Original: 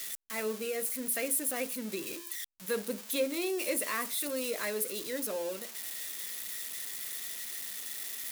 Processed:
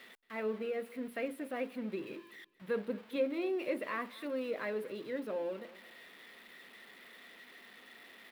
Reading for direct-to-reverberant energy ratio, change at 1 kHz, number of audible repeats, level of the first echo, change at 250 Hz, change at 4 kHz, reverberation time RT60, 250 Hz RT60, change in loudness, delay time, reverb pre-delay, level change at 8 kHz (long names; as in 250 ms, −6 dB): no reverb audible, −2.0 dB, 2, −20.0 dB, −0.5 dB, −12.5 dB, no reverb audible, no reverb audible, −4.5 dB, 227 ms, no reverb audible, below −25 dB